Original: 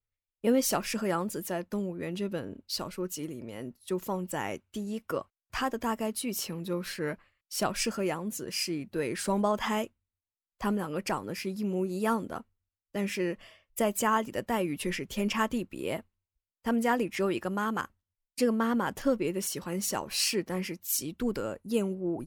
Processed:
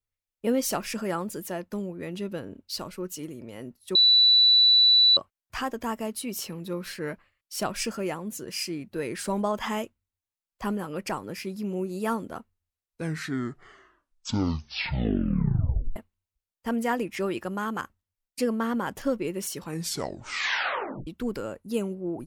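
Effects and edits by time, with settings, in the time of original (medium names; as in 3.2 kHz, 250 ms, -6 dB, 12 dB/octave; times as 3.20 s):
3.95–5.17 s: bleep 3.96 kHz -14.5 dBFS
12.39 s: tape stop 3.57 s
19.59 s: tape stop 1.48 s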